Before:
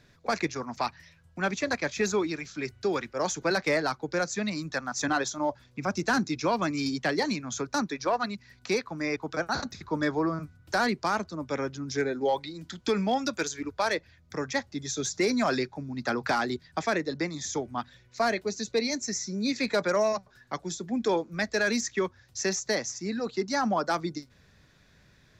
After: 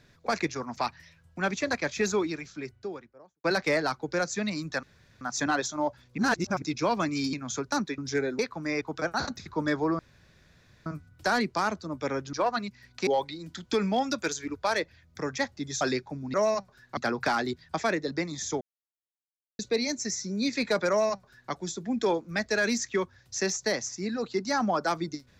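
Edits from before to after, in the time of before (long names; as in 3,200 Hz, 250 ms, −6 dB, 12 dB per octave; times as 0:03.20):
0:02.12–0:03.44: fade out and dull
0:04.83: splice in room tone 0.38 s
0:05.80–0:06.24: reverse
0:06.95–0:07.35: remove
0:08.00–0:08.74: swap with 0:11.81–0:12.22
0:10.34: splice in room tone 0.87 s
0:14.96–0:15.47: remove
0:17.64–0:18.62: silence
0:19.92–0:20.55: duplicate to 0:16.00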